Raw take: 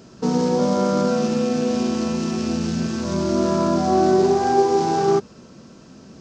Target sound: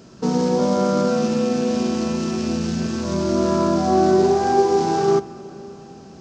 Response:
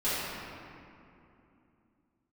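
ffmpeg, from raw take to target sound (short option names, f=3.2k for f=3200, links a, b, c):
-filter_complex "[0:a]asplit=2[a][b];[1:a]atrim=start_sample=2205,asetrate=26901,aresample=44100[c];[b][c]afir=irnorm=-1:irlink=0,volume=-30dB[d];[a][d]amix=inputs=2:normalize=0"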